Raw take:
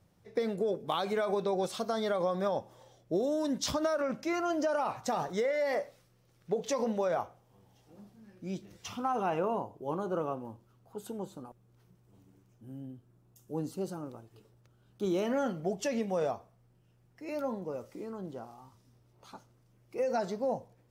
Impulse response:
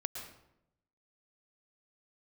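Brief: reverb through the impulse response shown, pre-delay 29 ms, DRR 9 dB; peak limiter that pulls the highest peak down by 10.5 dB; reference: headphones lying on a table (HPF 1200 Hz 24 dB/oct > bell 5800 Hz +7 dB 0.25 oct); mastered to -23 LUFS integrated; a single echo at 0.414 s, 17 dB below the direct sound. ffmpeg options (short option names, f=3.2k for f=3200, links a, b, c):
-filter_complex "[0:a]alimiter=level_in=4dB:limit=-24dB:level=0:latency=1,volume=-4dB,aecho=1:1:414:0.141,asplit=2[a][b];[1:a]atrim=start_sample=2205,adelay=29[c];[b][c]afir=irnorm=-1:irlink=0,volume=-9.5dB[d];[a][d]amix=inputs=2:normalize=0,highpass=f=1.2k:w=0.5412,highpass=f=1.2k:w=1.3066,equalizer=f=5.8k:t=o:w=0.25:g=7,volume=22.5dB"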